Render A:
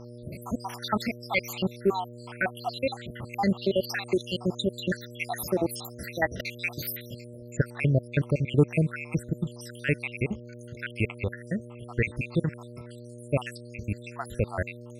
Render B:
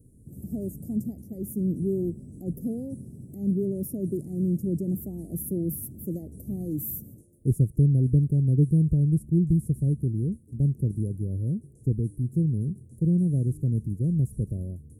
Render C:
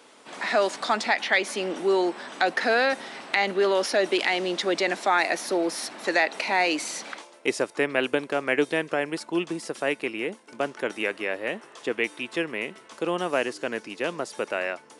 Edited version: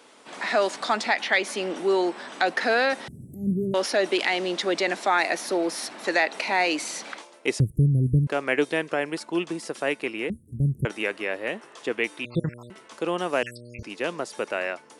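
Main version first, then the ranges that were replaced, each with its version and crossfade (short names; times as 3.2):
C
3.08–3.74 from B
7.6–8.27 from B
10.3–10.85 from B
12.25–12.7 from A
13.43–13.83 from A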